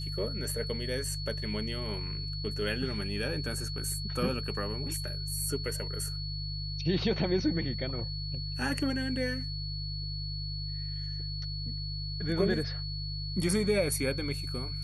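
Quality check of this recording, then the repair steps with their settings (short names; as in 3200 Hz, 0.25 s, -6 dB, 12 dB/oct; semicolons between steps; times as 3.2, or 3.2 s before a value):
hum 50 Hz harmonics 3 -37 dBFS
tone 4400 Hz -39 dBFS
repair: notch 4400 Hz, Q 30; de-hum 50 Hz, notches 3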